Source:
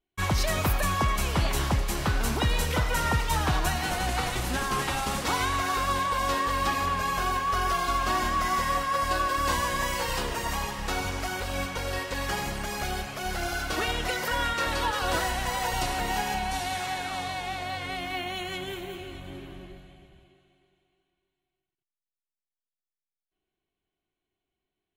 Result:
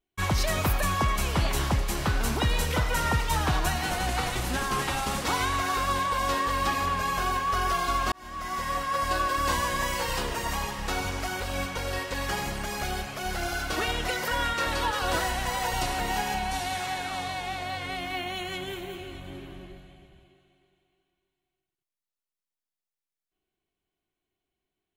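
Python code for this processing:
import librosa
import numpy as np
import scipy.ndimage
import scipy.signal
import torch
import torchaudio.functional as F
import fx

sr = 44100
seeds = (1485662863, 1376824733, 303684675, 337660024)

y = fx.edit(x, sr, fx.fade_in_span(start_s=8.12, length_s=1.2, curve='qsin'), tone=tone)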